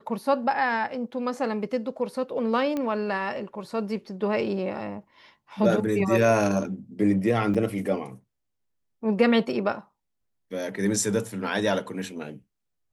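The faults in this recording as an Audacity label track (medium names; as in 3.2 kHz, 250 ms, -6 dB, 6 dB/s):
2.770000	2.770000	pop -17 dBFS
7.540000	7.550000	dropout 5.9 ms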